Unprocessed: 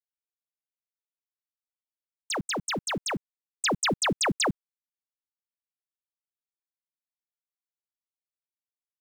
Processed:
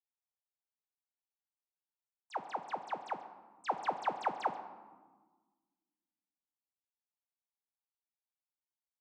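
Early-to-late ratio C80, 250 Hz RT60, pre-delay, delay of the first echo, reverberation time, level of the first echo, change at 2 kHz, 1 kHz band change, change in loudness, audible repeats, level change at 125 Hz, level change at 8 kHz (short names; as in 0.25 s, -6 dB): 11.5 dB, 1.9 s, 4 ms, 0.136 s, 1.5 s, -19.0 dB, -15.5 dB, -2.0 dB, -11.0 dB, 1, -24.0 dB, -30.0 dB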